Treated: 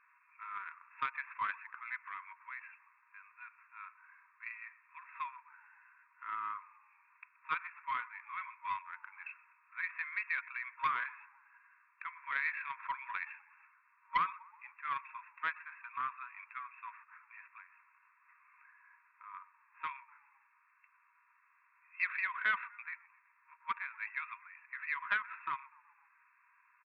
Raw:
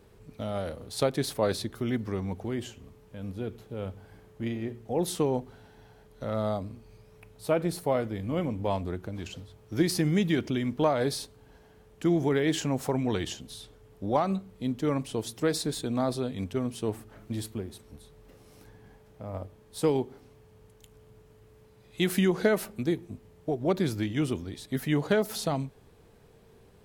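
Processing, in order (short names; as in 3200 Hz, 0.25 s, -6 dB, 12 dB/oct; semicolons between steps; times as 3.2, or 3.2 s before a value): FFT band-pass 940–2700 Hz; frequency-shifting echo 0.125 s, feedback 54%, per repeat -34 Hz, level -21.5 dB; Doppler distortion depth 0.15 ms; gain +2.5 dB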